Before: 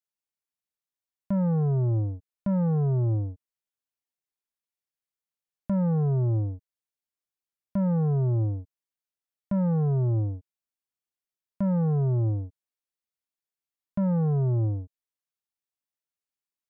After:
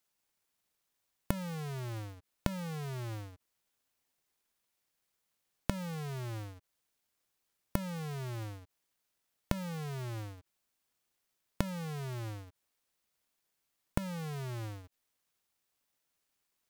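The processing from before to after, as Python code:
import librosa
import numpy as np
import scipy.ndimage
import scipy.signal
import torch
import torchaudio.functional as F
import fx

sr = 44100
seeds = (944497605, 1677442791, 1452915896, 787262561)

y = fx.halfwave_hold(x, sr)
y = fx.gate_flip(y, sr, shuts_db=-29.0, range_db=-27)
y = y * librosa.db_to_amplitude(10.5)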